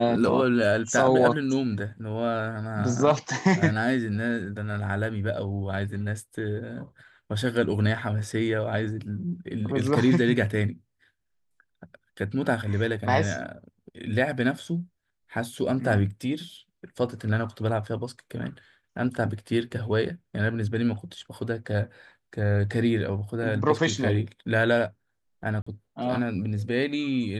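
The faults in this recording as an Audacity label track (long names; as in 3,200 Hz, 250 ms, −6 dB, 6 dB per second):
25.620000	25.660000	drop-out 45 ms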